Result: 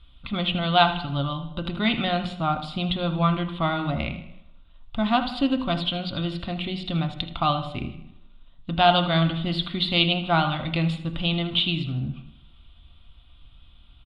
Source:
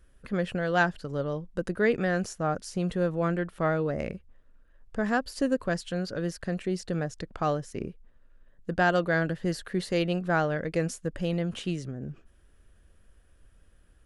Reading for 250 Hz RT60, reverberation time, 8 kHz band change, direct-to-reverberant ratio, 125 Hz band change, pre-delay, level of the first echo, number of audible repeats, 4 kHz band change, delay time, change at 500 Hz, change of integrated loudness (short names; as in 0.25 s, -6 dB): 0.80 s, 0.80 s, under -15 dB, 5.5 dB, +5.5 dB, 3 ms, -13.5 dB, 4, +17.0 dB, 79 ms, -0.5 dB, +5.0 dB